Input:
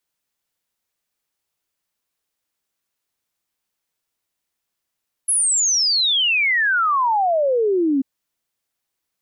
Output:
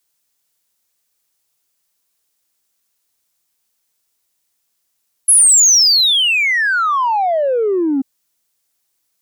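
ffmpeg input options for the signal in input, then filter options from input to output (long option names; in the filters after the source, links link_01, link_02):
-f lavfi -i "aevalsrc='0.178*clip(min(t,2.74-t)/0.01,0,1)*sin(2*PI*11000*2.74/log(260/11000)*(exp(log(260/11000)*t/2.74)-1))':duration=2.74:sample_rate=44100"
-filter_complex "[0:a]bass=frequency=250:gain=-1,treble=frequency=4000:gain=8,asplit=2[link_01][link_02];[link_02]asoftclip=type=tanh:threshold=-21dB,volume=-4.5dB[link_03];[link_01][link_03]amix=inputs=2:normalize=0"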